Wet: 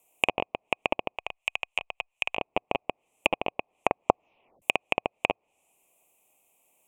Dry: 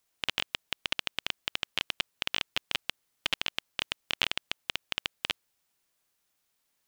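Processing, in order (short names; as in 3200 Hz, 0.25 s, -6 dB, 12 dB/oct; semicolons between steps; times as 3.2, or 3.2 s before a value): 1.16–2.37 passive tone stack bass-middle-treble 10-0-10; 3.45 tape stop 1.17 s; treble ducked by the level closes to 1200 Hz, closed at -36 dBFS; EQ curve 110 Hz 0 dB, 730 Hz +15 dB, 1100 Hz +5 dB, 1600 Hz -18 dB, 2500 Hz +13 dB, 4600 Hz -19 dB, 7300 Hz +9 dB; gain +3 dB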